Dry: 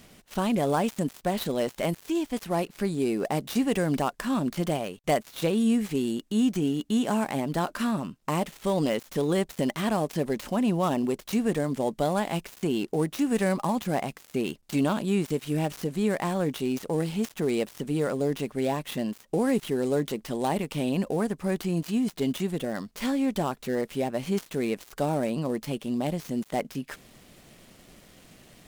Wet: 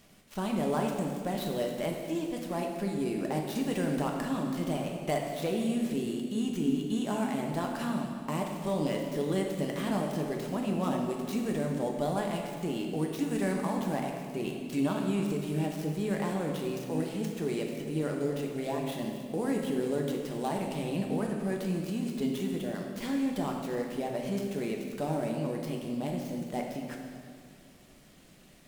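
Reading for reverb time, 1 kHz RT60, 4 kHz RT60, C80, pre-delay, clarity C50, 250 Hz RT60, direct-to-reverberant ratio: 2.0 s, 1.9 s, 1.8 s, 4.5 dB, 3 ms, 3.0 dB, 2.5 s, 0.5 dB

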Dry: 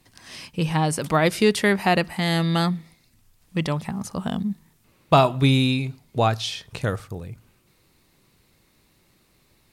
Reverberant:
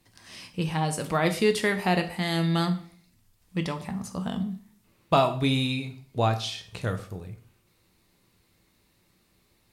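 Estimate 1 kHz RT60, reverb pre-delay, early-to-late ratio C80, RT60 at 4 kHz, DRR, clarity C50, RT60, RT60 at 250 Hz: 0.45 s, 5 ms, 16.5 dB, 0.45 s, 6.5 dB, 13.0 dB, 0.45 s, 0.55 s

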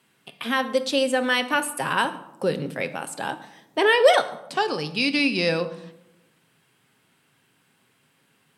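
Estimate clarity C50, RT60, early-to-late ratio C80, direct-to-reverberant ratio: 14.0 dB, 0.95 s, 16.0 dB, 9.0 dB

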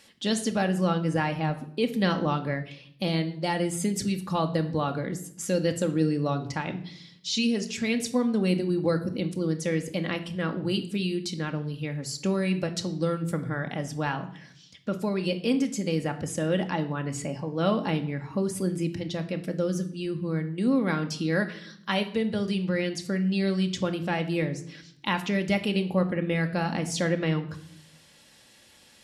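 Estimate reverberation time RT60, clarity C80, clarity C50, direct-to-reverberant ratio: 0.65 s, 16.5 dB, 13.5 dB, 5.0 dB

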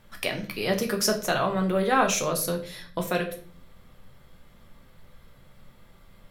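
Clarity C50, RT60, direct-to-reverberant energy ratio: 11.0 dB, 0.45 s, 2.5 dB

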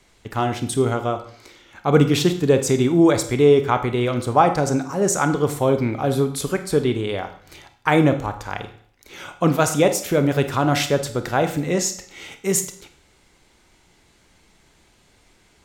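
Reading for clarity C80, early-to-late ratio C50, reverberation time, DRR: 14.5 dB, 11.0 dB, 0.60 s, 8.0 dB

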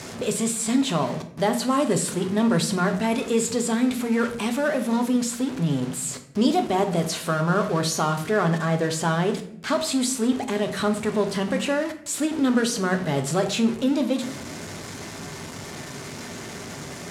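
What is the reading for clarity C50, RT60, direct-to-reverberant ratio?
11.0 dB, 0.70 s, 5.5 dB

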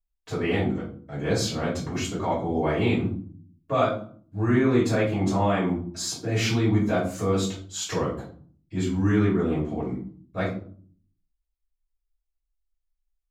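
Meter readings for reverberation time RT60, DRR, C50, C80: 0.50 s, -10.0 dB, 5.5 dB, 10.5 dB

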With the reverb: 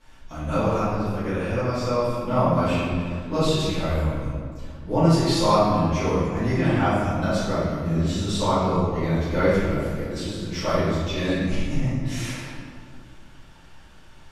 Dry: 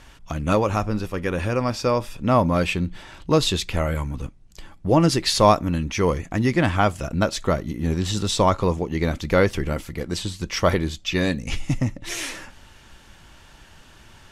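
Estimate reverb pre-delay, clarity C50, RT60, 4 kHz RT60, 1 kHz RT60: 4 ms, -3.5 dB, 2.2 s, 1.2 s, 2.0 s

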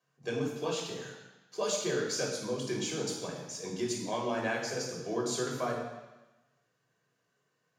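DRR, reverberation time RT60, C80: -1.5 dB, 1.1 s, 5.5 dB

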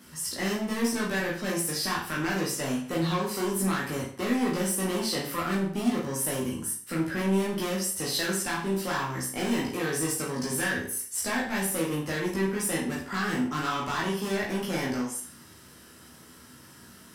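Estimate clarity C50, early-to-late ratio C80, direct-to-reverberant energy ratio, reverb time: 5.0 dB, 10.0 dB, -4.5 dB, 0.50 s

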